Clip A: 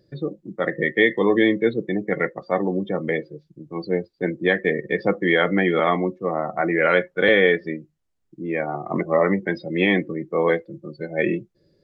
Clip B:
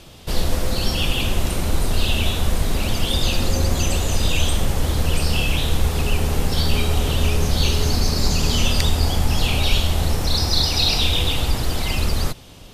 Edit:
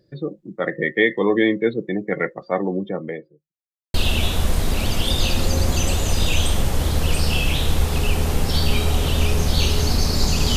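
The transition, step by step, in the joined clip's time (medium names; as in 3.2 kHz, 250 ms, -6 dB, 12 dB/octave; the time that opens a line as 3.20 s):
clip A
2.73–3.55 s: studio fade out
3.55–3.94 s: mute
3.94 s: go over to clip B from 1.97 s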